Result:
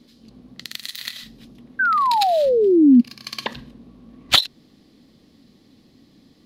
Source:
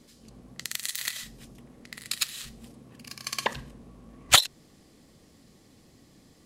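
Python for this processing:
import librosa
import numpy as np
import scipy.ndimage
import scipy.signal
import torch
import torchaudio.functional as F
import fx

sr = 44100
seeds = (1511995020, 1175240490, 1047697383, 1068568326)

y = fx.spec_paint(x, sr, seeds[0], shape='fall', start_s=1.79, length_s=1.22, low_hz=230.0, high_hz=1600.0, level_db=-17.0)
y = fx.graphic_eq_10(y, sr, hz=(250, 4000, 8000), db=(9, 9, -10))
y = F.gain(torch.from_numpy(y), -1.5).numpy()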